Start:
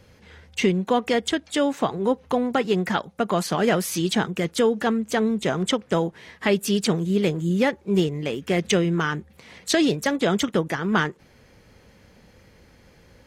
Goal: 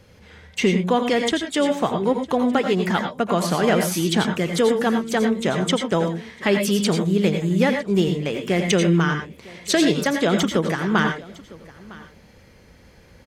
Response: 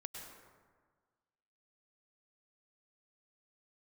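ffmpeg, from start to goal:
-filter_complex "[0:a]aecho=1:1:956:0.0841[link_01];[1:a]atrim=start_sample=2205,atrim=end_sample=6615,asetrate=52920,aresample=44100[link_02];[link_01][link_02]afir=irnorm=-1:irlink=0,volume=8.5dB"

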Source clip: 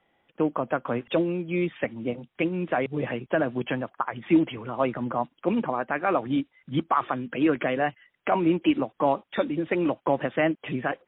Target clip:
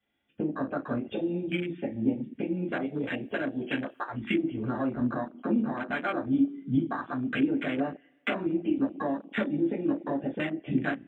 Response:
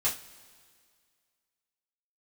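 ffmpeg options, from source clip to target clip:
-filter_complex "[0:a]acompressor=threshold=-32dB:ratio=8,asettb=1/sr,asplit=3[link_01][link_02][link_03];[link_01]atrim=end=2.784[link_04];[link_02]atrim=start=2.78:end=4.05,asetpts=PTS-STARTPTS,afade=type=in:duration=0.004:curve=qsin,afade=type=out:start_time=1.266:duration=0.004:curve=qsin,bass=frequency=250:gain=-7,treble=frequency=4000:gain=15[link_05];[link_03]atrim=start=4.046[link_06];[link_04][link_05]acrossfade=duration=0.004:curve1=hsin:curve2=qsin[link_07];[link_07][link_06]acrossfade=duration=0.004:curve1=qsin:curve2=hsin[link_08];[1:a]atrim=start_sample=2205,asetrate=57330,aresample=44100[link_09];[link_08][link_09]afir=irnorm=-1:irlink=0,afwtdn=0.0178,equalizer=frequency=125:width_type=o:width=1:gain=-10,equalizer=frequency=250:width_type=o:width=1:gain=8,equalizer=frequency=500:width_type=o:width=1:gain=-6,equalizer=frequency=1000:width_type=o:width=1:gain=-10,volume=6.5dB"

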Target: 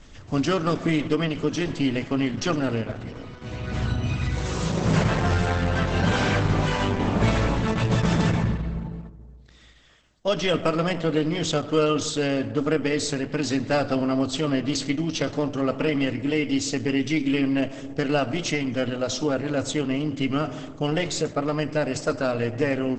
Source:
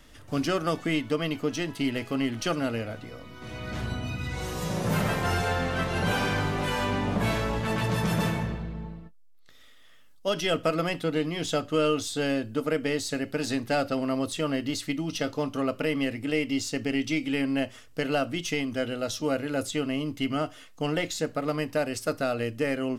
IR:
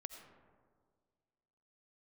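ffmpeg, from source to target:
-filter_complex "[0:a]asplit=2[link_01][link_02];[1:a]atrim=start_sample=2205,lowshelf=frequency=220:gain=10.5[link_03];[link_02][link_03]afir=irnorm=-1:irlink=0,volume=-0.5dB[link_04];[link_01][link_04]amix=inputs=2:normalize=0" -ar 48000 -c:a libopus -b:a 10k

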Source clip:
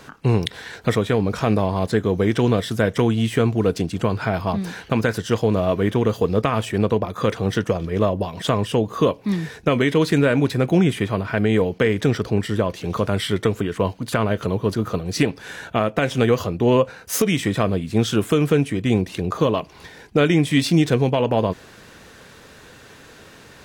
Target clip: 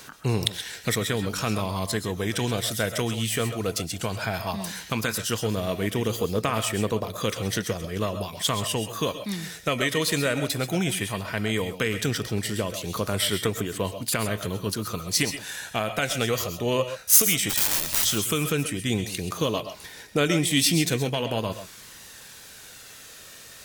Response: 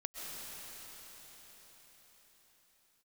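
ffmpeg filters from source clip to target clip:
-filter_complex "[0:a]asplit=3[link_01][link_02][link_03];[link_01]afade=type=out:start_time=17.49:duration=0.02[link_04];[link_02]aeval=exprs='(mod(13.3*val(0)+1,2)-1)/13.3':channel_layout=same,afade=type=in:start_time=17.49:duration=0.02,afade=type=out:start_time=18.04:duration=0.02[link_05];[link_03]afade=type=in:start_time=18.04:duration=0.02[link_06];[link_04][link_05][link_06]amix=inputs=3:normalize=0,crystalizer=i=6.5:c=0,aphaser=in_gain=1:out_gain=1:delay=1.7:decay=0.25:speed=0.15:type=triangular[link_07];[1:a]atrim=start_sample=2205,atrim=end_sample=6174[link_08];[link_07][link_08]afir=irnorm=-1:irlink=0,volume=-5.5dB"

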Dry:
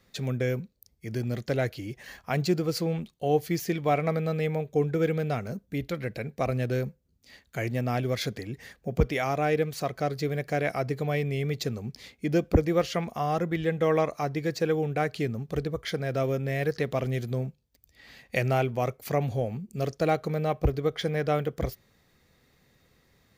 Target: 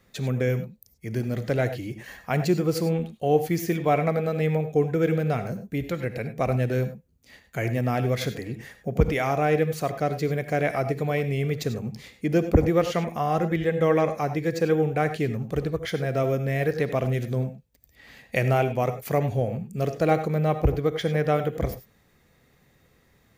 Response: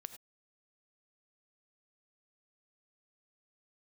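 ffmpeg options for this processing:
-filter_complex "[0:a]equalizer=frequency=4500:width=1.6:gain=-5.5[link_01];[1:a]atrim=start_sample=2205[link_02];[link_01][link_02]afir=irnorm=-1:irlink=0,volume=8dB"

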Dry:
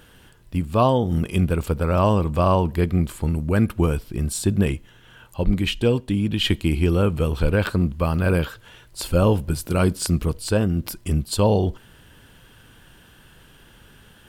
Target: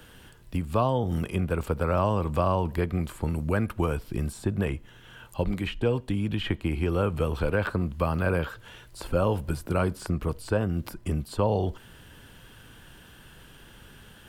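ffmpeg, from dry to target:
ffmpeg -i in.wav -filter_complex "[0:a]acrossover=split=140|490|2000[link_01][link_02][link_03][link_04];[link_01]acompressor=threshold=-30dB:ratio=4[link_05];[link_02]acompressor=threshold=-31dB:ratio=4[link_06];[link_03]acompressor=threshold=-24dB:ratio=4[link_07];[link_04]acompressor=threshold=-47dB:ratio=4[link_08];[link_05][link_06][link_07][link_08]amix=inputs=4:normalize=0" out.wav

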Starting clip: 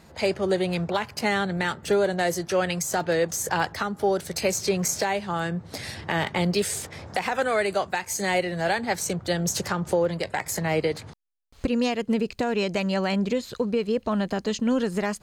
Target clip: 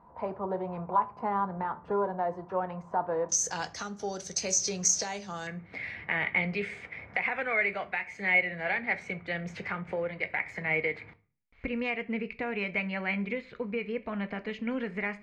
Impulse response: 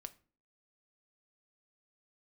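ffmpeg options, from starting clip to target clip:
-filter_complex "[0:a]asetnsamples=nb_out_samples=441:pad=0,asendcmd='3.29 lowpass f 6100;5.47 lowpass f 2200',lowpass=frequency=1000:width_type=q:width=8.4[link_01];[1:a]atrim=start_sample=2205[link_02];[link_01][link_02]afir=irnorm=-1:irlink=0,volume=-5.5dB"

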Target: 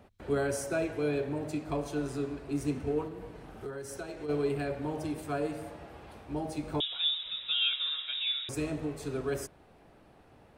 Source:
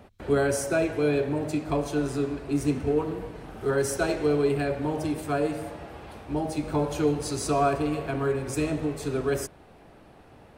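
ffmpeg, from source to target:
ffmpeg -i in.wav -filter_complex "[0:a]asplit=3[link_01][link_02][link_03];[link_01]afade=type=out:start_time=3.07:duration=0.02[link_04];[link_02]acompressor=threshold=-30dB:ratio=12,afade=type=in:start_time=3.07:duration=0.02,afade=type=out:start_time=4.28:duration=0.02[link_05];[link_03]afade=type=in:start_time=4.28:duration=0.02[link_06];[link_04][link_05][link_06]amix=inputs=3:normalize=0,asettb=1/sr,asplit=3[link_07][link_08][link_09];[link_07]atrim=end=6.804[link_10];[link_08]atrim=start=6.8:end=8.49,asetpts=PTS-STARTPTS,afade=type=in:duration=0.004:curve=qsin,afade=type=out:start_time=1.686:duration=0.004:curve=qsin,lowpass=frequency=3300:width_type=q:width=0.5098,lowpass=frequency=3300:width_type=q:width=0.6013,lowpass=frequency=3300:width_type=q:width=0.9,lowpass=frequency=3300:width_type=q:width=2.563,afreqshift=-3900[link_11];[link_09]atrim=start=8.486[link_12];[link_10][link_11]acrossfade=duration=0.004:curve1=hsin:curve2=qsin[link_13];[link_13][link_12]acrossfade=duration=0.004:curve1=qsin:curve2=hsin,volume=-6.5dB" out.wav

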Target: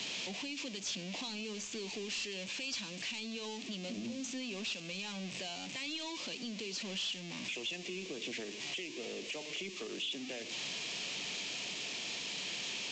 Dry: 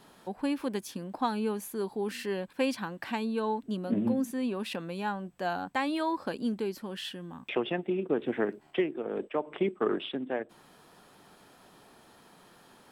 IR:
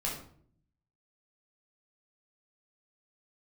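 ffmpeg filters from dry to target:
-filter_complex "[0:a]aeval=exprs='val(0)+0.5*0.0168*sgn(val(0))':channel_layout=same,highpass=frequency=130:width=0.5412,highpass=frequency=130:width=1.3066,highshelf=frequency=1900:width_type=q:width=3:gain=10,bandreject=frequency=810:width=12,acrossover=split=4900[link_01][link_02];[link_01]alimiter=level_in=2.5dB:limit=-24dB:level=0:latency=1:release=371,volume=-2.5dB[link_03];[link_03][link_02]amix=inputs=2:normalize=0,acrossover=split=190|3000[link_04][link_05][link_06];[link_05]acompressor=threshold=-36dB:ratio=6[link_07];[link_04][link_07][link_06]amix=inputs=3:normalize=0,asoftclip=type=tanh:threshold=-28.5dB,asplit=2[link_08][link_09];[1:a]atrim=start_sample=2205[link_10];[link_09][link_10]afir=irnorm=-1:irlink=0,volume=-20dB[link_11];[link_08][link_11]amix=inputs=2:normalize=0,volume=-4dB" -ar 16000 -c:a pcm_mulaw

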